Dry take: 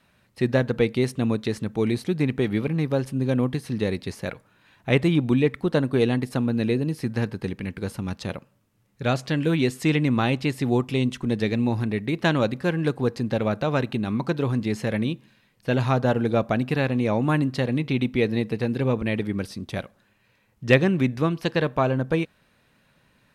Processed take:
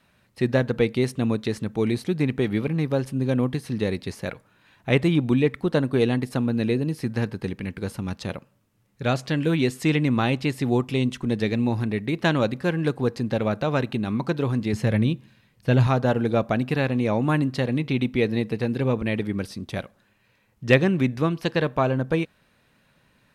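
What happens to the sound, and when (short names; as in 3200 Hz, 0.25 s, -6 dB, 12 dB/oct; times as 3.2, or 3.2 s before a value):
14.73–15.87 bell 86 Hz +9.5 dB 1.8 oct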